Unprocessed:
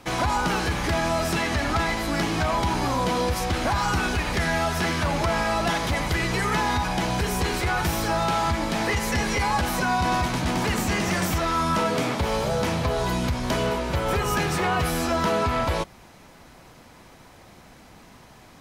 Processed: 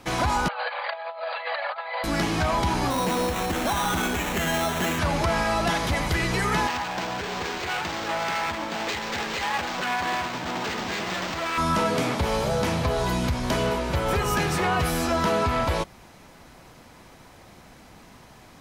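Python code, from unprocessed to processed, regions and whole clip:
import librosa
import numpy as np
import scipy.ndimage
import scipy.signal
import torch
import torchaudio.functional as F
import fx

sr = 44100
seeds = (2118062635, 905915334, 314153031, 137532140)

y = fx.chain(x, sr, fx.envelope_sharpen(power=1.5),
    fx.brickwall_bandpass(low_hz=470.0, high_hz=4800.0),
    fx.over_compress(threshold_db=-30.0, ratio=-0.5), at=(0.48, 2.04))
y = fx.chain(y, sr, fx.low_shelf_res(hz=150.0, db=-6.0, q=1.5),
    fx.sample_hold(seeds[0], rate_hz=4800.0, jitter_pct=0),
    fx.overload_stage(gain_db=20.0), at=(2.9, 4.99))
y = fx.chain(y, sr, fx.self_delay(depth_ms=0.25),
    fx.highpass(hz=470.0, slope=6),
    fx.resample_linear(factor=4), at=(6.67, 11.58))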